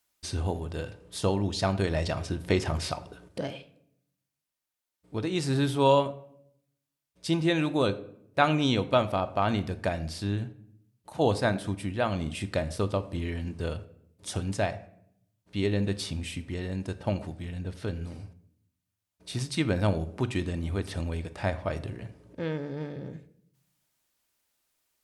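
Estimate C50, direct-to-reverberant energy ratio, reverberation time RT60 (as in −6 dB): 16.0 dB, 10.0 dB, 0.70 s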